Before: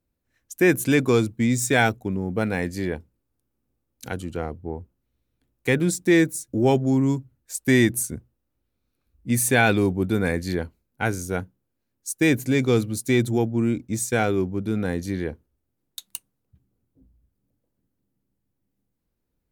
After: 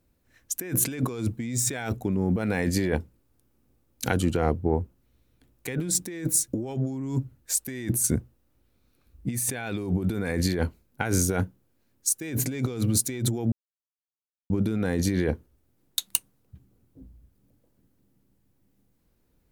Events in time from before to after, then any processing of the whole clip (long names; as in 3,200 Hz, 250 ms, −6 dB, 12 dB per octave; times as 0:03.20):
0:13.52–0:14.50: silence
whole clip: compressor whose output falls as the input rises −30 dBFS, ratio −1; level +2.5 dB